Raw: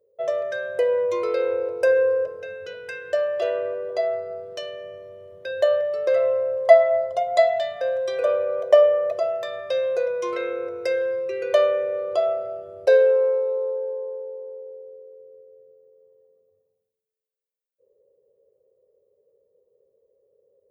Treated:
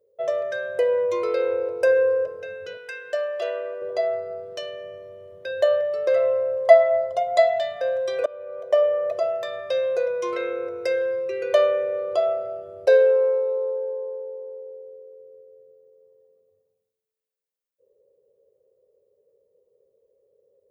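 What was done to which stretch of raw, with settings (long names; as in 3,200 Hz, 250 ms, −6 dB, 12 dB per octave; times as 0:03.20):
0:02.77–0:03.82: high-pass filter 640 Hz 6 dB per octave
0:08.26–0:09.20: fade in, from −23 dB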